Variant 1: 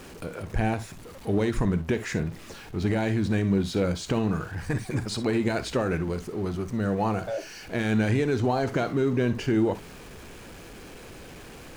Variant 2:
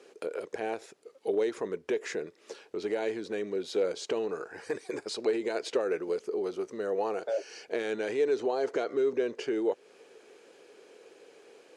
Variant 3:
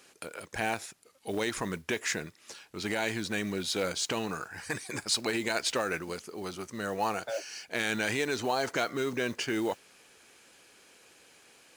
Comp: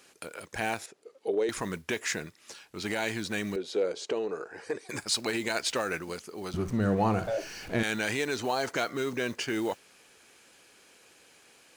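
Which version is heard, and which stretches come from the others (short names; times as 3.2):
3
0.86–1.49 from 2
3.56–4.89 from 2
6.54–7.83 from 1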